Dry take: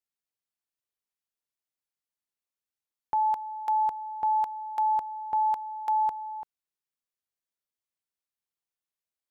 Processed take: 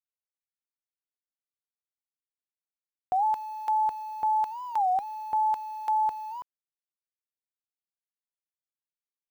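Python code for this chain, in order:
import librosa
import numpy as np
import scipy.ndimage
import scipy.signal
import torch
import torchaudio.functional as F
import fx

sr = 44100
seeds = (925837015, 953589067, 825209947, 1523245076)

y = fx.delta_hold(x, sr, step_db=-52.5)
y = fx.record_warp(y, sr, rpm=33.33, depth_cents=250.0)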